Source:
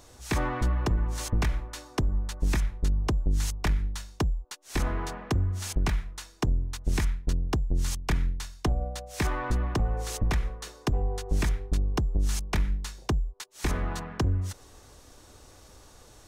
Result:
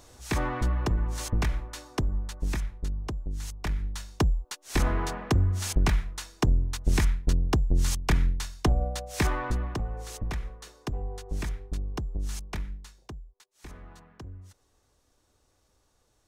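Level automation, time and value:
0:01.91 −0.5 dB
0:03.38 −8.5 dB
0:04.23 +3 dB
0:09.18 +3 dB
0:09.89 −6 dB
0:12.46 −6 dB
0:13.28 −17 dB

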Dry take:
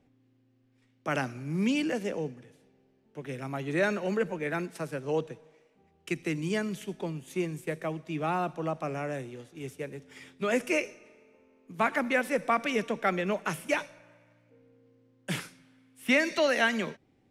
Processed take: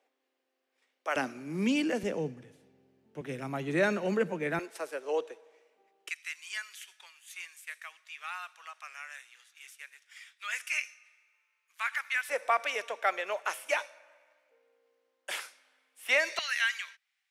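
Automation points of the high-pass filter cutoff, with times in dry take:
high-pass filter 24 dB per octave
490 Hz
from 0:01.16 200 Hz
from 0:02.03 56 Hz
from 0:03.21 130 Hz
from 0:04.59 400 Hz
from 0:06.09 1,400 Hz
from 0:12.29 560 Hz
from 0:16.39 1,500 Hz

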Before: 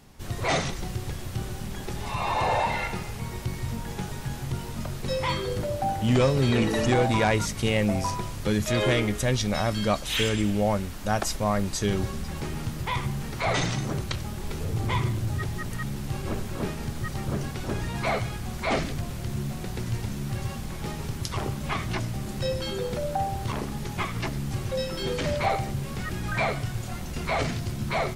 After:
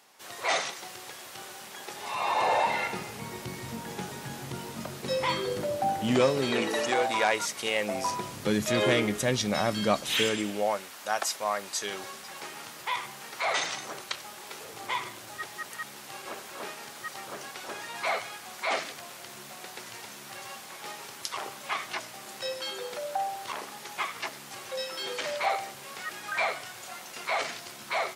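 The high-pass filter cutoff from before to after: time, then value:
0:01.75 650 Hz
0:03.02 220 Hz
0:06.11 220 Hz
0:06.94 540 Hz
0:07.78 540 Hz
0:08.35 180 Hz
0:10.10 180 Hz
0:10.85 690 Hz

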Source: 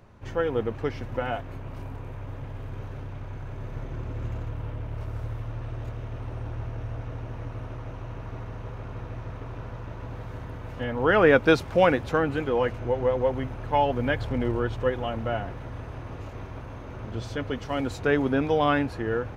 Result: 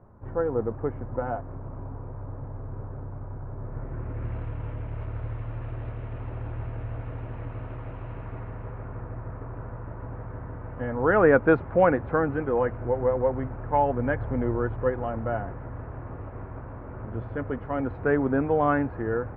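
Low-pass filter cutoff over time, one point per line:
low-pass filter 24 dB per octave
0:03.58 1,300 Hz
0:04.43 2,700 Hz
0:08.12 2,700 Hz
0:09.13 1,700 Hz

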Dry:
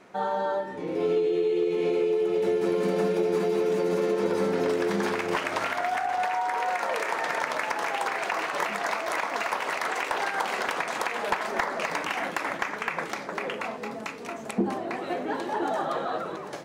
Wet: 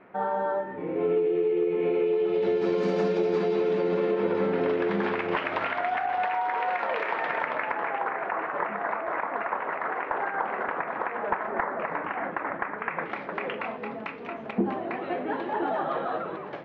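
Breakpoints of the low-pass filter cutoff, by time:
low-pass filter 24 dB per octave
0:01.78 2,400 Hz
0:02.89 5,900 Hz
0:04.24 3,200 Hz
0:07.16 3,200 Hz
0:08.17 1,800 Hz
0:12.76 1,800 Hz
0:13.23 3,000 Hz

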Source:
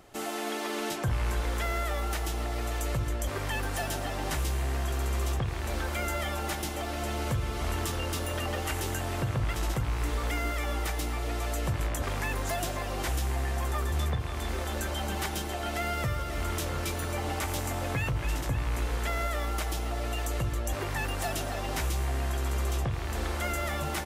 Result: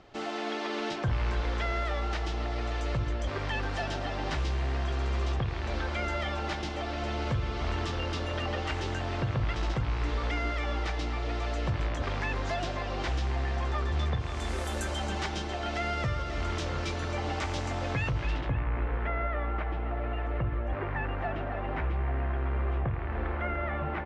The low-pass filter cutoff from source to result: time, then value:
low-pass filter 24 dB per octave
0:14.03 5,100 Hz
0:14.68 11,000 Hz
0:15.28 5,800 Hz
0:18.19 5,800 Hz
0:18.66 2,200 Hz

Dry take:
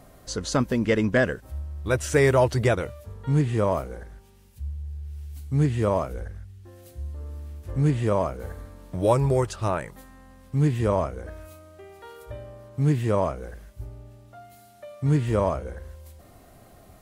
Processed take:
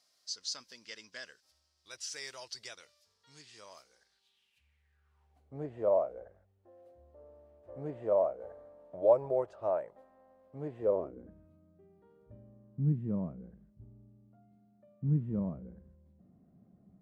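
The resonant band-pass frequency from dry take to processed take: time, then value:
resonant band-pass, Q 4.1
0:04.02 5,000 Hz
0:04.91 1,800 Hz
0:05.43 610 Hz
0:10.79 610 Hz
0:11.35 190 Hz

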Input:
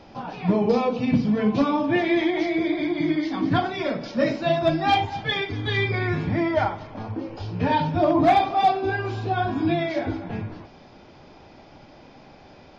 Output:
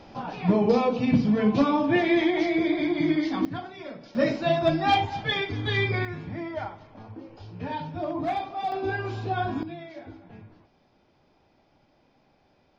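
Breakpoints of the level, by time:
−0.5 dB
from 0:03.45 −13 dB
from 0:04.15 −1.5 dB
from 0:06.05 −11 dB
from 0:08.72 −3.5 dB
from 0:09.63 −16 dB

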